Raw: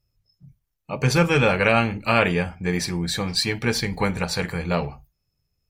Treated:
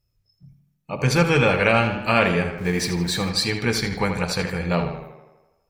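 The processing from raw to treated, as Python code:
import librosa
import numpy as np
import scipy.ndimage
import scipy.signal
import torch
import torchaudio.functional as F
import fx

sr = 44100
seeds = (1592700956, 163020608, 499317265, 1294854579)

y = fx.zero_step(x, sr, step_db=-35.0, at=(2.58, 3.3))
y = fx.echo_tape(y, sr, ms=79, feedback_pct=64, wet_db=-7.0, lp_hz=4300.0, drive_db=9.0, wow_cents=36)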